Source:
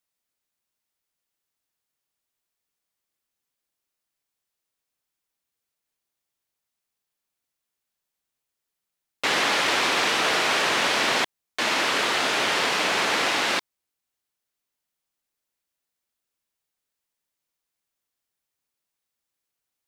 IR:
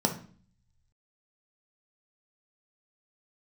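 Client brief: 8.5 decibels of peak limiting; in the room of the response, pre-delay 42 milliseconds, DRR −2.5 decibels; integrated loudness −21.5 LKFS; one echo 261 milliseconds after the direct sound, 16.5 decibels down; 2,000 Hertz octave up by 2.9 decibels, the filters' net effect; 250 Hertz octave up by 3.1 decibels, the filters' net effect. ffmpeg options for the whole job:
-filter_complex "[0:a]equalizer=frequency=250:width_type=o:gain=4,equalizer=frequency=2000:width_type=o:gain=3.5,alimiter=limit=-17dB:level=0:latency=1,aecho=1:1:261:0.15,asplit=2[link_01][link_02];[1:a]atrim=start_sample=2205,adelay=42[link_03];[link_02][link_03]afir=irnorm=-1:irlink=0,volume=-7dB[link_04];[link_01][link_04]amix=inputs=2:normalize=0,volume=-0.5dB"

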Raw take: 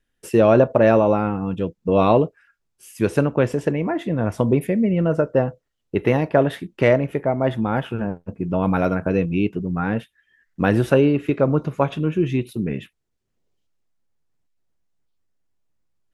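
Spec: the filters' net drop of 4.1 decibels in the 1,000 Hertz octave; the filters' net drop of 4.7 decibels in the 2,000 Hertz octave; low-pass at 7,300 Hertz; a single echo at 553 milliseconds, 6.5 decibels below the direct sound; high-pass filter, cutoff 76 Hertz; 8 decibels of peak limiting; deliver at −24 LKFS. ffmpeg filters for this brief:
ffmpeg -i in.wav -af "highpass=76,lowpass=7300,equalizer=frequency=1000:width_type=o:gain=-5,equalizer=frequency=2000:width_type=o:gain=-4.5,alimiter=limit=-12dB:level=0:latency=1,aecho=1:1:553:0.473,volume=-0.5dB" out.wav

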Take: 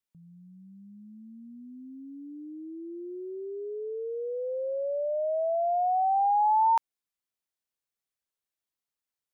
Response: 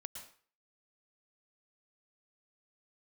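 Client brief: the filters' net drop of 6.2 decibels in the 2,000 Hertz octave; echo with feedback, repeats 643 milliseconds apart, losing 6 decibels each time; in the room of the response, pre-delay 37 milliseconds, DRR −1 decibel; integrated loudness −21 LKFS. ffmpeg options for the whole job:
-filter_complex "[0:a]equalizer=frequency=2000:width_type=o:gain=-8.5,aecho=1:1:643|1286|1929|2572|3215|3858:0.501|0.251|0.125|0.0626|0.0313|0.0157,asplit=2[link_01][link_02];[1:a]atrim=start_sample=2205,adelay=37[link_03];[link_02][link_03]afir=irnorm=-1:irlink=0,volume=5dB[link_04];[link_01][link_04]amix=inputs=2:normalize=0,volume=4.5dB"

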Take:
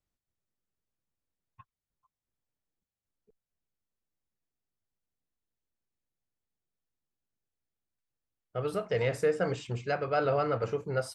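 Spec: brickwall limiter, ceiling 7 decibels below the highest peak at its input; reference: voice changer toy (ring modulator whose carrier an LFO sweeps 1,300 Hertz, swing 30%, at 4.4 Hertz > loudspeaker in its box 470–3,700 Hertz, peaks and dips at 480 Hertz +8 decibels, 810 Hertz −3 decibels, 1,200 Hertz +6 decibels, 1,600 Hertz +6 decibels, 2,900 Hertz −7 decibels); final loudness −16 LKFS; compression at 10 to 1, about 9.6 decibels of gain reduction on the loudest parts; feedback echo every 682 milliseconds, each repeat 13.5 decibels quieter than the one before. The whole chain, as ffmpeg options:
ffmpeg -i in.wav -af "acompressor=threshold=-33dB:ratio=10,alimiter=level_in=7dB:limit=-24dB:level=0:latency=1,volume=-7dB,aecho=1:1:682|1364:0.211|0.0444,aeval=exprs='val(0)*sin(2*PI*1300*n/s+1300*0.3/4.4*sin(2*PI*4.4*n/s))':channel_layout=same,highpass=470,equalizer=frequency=480:width_type=q:width=4:gain=8,equalizer=frequency=810:width_type=q:width=4:gain=-3,equalizer=frequency=1200:width_type=q:width=4:gain=6,equalizer=frequency=1600:width_type=q:width=4:gain=6,equalizer=frequency=2900:width_type=q:width=4:gain=-7,lowpass=frequency=3700:width=0.5412,lowpass=frequency=3700:width=1.3066,volume=23dB" out.wav

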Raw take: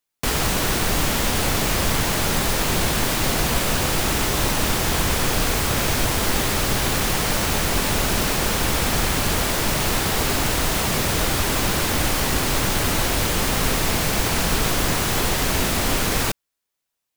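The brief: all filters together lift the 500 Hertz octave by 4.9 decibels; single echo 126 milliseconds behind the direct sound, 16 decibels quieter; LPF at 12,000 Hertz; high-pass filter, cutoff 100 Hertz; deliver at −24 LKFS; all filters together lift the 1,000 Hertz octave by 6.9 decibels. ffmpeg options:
ffmpeg -i in.wav -af "highpass=100,lowpass=12000,equalizer=frequency=500:width_type=o:gain=4,equalizer=frequency=1000:width_type=o:gain=7.5,aecho=1:1:126:0.158,volume=-5dB" out.wav

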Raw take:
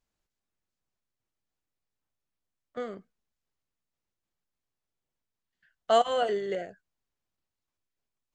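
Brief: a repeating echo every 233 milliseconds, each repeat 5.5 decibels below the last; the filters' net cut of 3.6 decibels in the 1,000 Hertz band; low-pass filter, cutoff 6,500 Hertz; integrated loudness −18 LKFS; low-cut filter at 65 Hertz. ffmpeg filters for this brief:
ffmpeg -i in.wav -af "highpass=65,lowpass=6500,equalizer=frequency=1000:width_type=o:gain=-6.5,aecho=1:1:233|466|699|932|1165|1398|1631:0.531|0.281|0.149|0.079|0.0419|0.0222|0.0118,volume=13.5dB" out.wav

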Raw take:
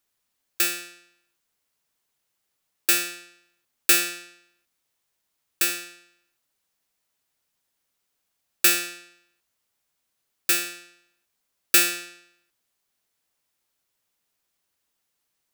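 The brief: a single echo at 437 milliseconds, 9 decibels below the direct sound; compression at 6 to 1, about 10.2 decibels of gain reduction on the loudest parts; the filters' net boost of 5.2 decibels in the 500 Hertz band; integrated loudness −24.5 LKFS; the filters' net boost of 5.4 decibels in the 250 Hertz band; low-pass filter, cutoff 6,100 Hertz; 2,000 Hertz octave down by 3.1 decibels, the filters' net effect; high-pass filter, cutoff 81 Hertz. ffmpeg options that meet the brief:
ffmpeg -i in.wav -af "highpass=81,lowpass=6100,equalizer=frequency=250:width_type=o:gain=7,equalizer=frequency=500:width_type=o:gain=4,equalizer=frequency=2000:width_type=o:gain=-4.5,acompressor=threshold=-29dB:ratio=6,aecho=1:1:437:0.355,volume=12.5dB" out.wav

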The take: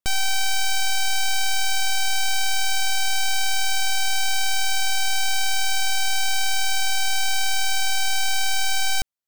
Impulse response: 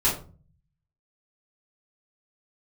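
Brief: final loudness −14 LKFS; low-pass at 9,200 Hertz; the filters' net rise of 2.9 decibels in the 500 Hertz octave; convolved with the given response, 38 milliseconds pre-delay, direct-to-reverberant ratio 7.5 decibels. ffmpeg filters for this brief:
-filter_complex "[0:a]lowpass=9200,equalizer=frequency=500:width_type=o:gain=4.5,asplit=2[link_01][link_02];[1:a]atrim=start_sample=2205,adelay=38[link_03];[link_02][link_03]afir=irnorm=-1:irlink=0,volume=-20dB[link_04];[link_01][link_04]amix=inputs=2:normalize=0,volume=9dB"

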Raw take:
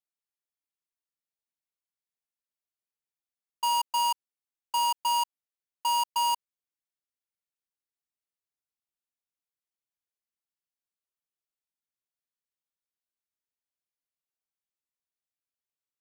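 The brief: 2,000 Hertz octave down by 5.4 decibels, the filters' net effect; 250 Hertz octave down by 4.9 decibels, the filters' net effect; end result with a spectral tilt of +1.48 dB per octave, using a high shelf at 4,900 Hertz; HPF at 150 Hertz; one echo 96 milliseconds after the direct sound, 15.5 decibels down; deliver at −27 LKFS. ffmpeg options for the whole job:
ffmpeg -i in.wav -af "highpass=150,equalizer=frequency=250:width_type=o:gain=-4.5,equalizer=frequency=2000:width_type=o:gain=-7.5,highshelf=frequency=4900:gain=-6.5,aecho=1:1:96:0.168,volume=3.5dB" out.wav

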